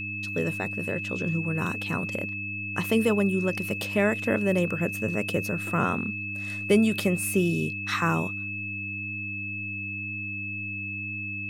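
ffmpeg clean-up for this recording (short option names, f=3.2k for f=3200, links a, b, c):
-af "bandreject=f=101:t=h:w=4,bandreject=f=202:t=h:w=4,bandreject=f=303:t=h:w=4,bandreject=f=2.6k:w=30"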